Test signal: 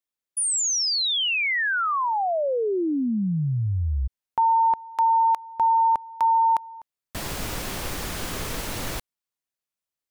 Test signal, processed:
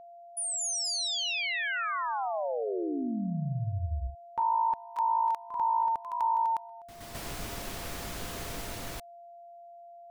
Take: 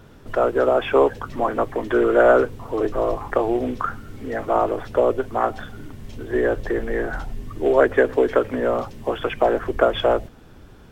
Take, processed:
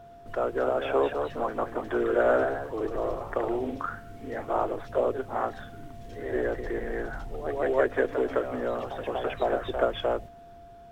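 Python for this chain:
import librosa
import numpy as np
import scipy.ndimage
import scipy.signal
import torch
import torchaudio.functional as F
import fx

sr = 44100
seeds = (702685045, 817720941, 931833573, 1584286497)

y = fx.echo_pitch(x, sr, ms=259, semitones=1, count=2, db_per_echo=-6.0)
y = y + 10.0 ** (-38.0 / 20.0) * np.sin(2.0 * np.pi * 690.0 * np.arange(len(y)) / sr)
y = y * 10.0 ** (-9.0 / 20.0)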